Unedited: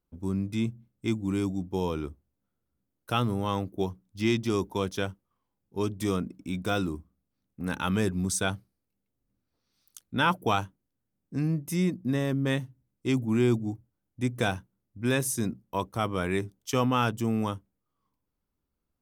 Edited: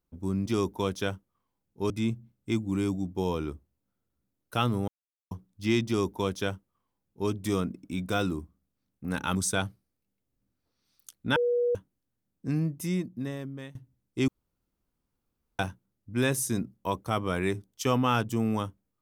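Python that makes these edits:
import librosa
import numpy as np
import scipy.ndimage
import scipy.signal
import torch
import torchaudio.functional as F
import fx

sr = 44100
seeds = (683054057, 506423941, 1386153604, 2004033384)

y = fx.edit(x, sr, fx.silence(start_s=3.44, length_s=0.43),
    fx.duplicate(start_s=4.42, length_s=1.44, to_s=0.46),
    fx.cut(start_s=7.91, length_s=0.32),
    fx.bleep(start_s=10.24, length_s=0.39, hz=483.0, db=-22.5),
    fx.fade_out_to(start_s=11.41, length_s=1.22, floor_db=-20.5),
    fx.room_tone_fill(start_s=13.16, length_s=1.31), tone=tone)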